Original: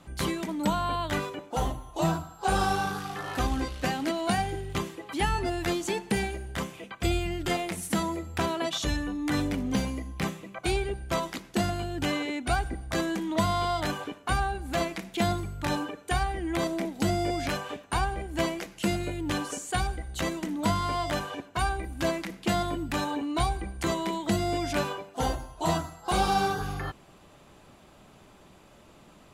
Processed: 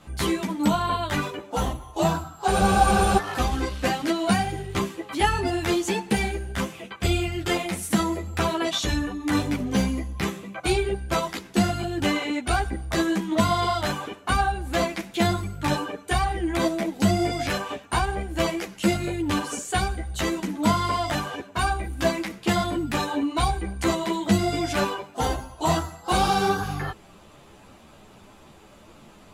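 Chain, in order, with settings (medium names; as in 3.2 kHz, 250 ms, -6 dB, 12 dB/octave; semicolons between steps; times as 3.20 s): spectral freeze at 2.53 s, 0.65 s; three-phase chorus; trim +7.5 dB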